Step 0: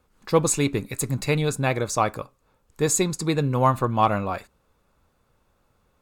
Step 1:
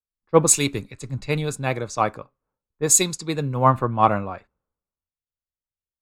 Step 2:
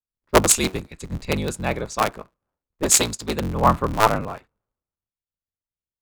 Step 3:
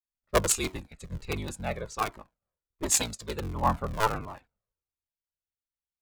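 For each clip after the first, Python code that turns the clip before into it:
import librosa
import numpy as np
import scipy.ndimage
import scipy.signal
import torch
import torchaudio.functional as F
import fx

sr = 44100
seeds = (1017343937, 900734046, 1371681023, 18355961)

y1 = fx.env_lowpass(x, sr, base_hz=1400.0, full_db=-18.5)
y1 = fx.band_widen(y1, sr, depth_pct=100)
y1 = y1 * librosa.db_to_amplitude(-1.0)
y2 = fx.cycle_switch(y1, sr, every=3, mode='inverted')
y3 = fx.comb_cascade(y2, sr, direction='falling', hz=1.4)
y3 = y3 * librosa.db_to_amplitude(-4.5)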